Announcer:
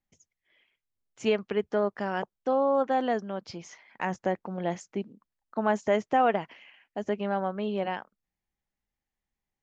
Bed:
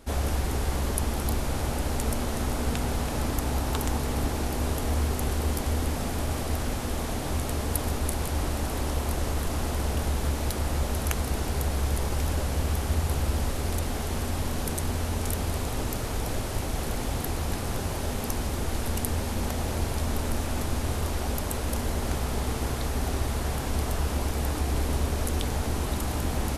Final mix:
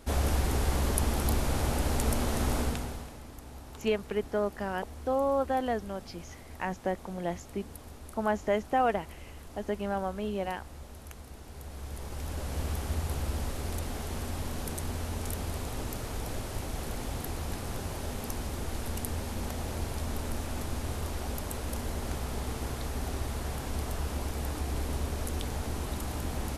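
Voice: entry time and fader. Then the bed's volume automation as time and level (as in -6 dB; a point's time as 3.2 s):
2.60 s, -3.0 dB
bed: 2.59 s -0.5 dB
3.21 s -18.5 dB
11.43 s -18.5 dB
12.6 s -6 dB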